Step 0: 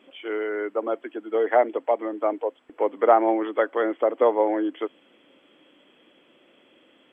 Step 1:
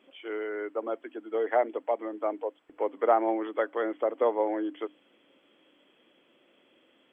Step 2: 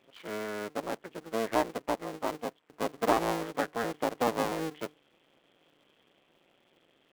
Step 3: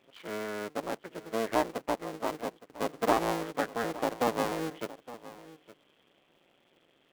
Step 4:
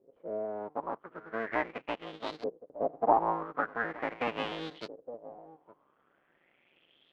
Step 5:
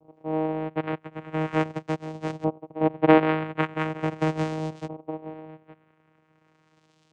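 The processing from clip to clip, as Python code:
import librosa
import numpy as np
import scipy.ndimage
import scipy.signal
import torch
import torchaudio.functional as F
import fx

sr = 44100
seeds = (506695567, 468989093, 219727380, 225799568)

y1 = fx.hum_notches(x, sr, base_hz=50, count=6)
y1 = F.gain(torch.from_numpy(y1), -6.0).numpy()
y2 = fx.cycle_switch(y1, sr, every=2, mode='muted')
y3 = y2 + 10.0 ** (-17.0 / 20.0) * np.pad(y2, (int(865 * sr / 1000.0), 0))[:len(y2)]
y4 = fx.filter_lfo_lowpass(y3, sr, shape='saw_up', hz=0.41, low_hz=440.0, high_hz=4500.0, q=4.7)
y4 = F.gain(torch.from_numpy(y4), -6.0).numpy()
y5 = fx.vocoder(y4, sr, bands=4, carrier='saw', carrier_hz=157.0)
y5 = F.gain(torch.from_numpy(y5), 8.5).numpy()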